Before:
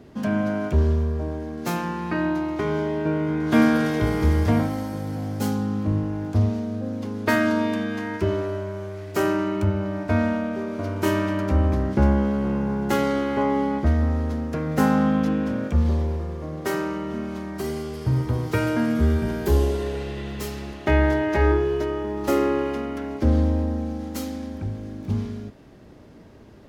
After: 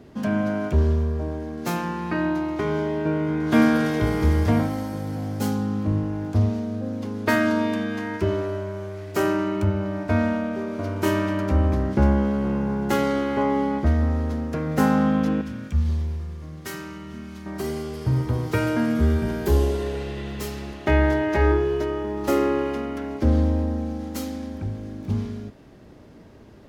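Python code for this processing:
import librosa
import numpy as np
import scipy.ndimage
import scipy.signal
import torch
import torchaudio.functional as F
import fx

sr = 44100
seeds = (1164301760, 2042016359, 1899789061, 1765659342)

y = fx.peak_eq(x, sr, hz=560.0, db=-15.0, octaves=2.4, at=(15.41, 17.46))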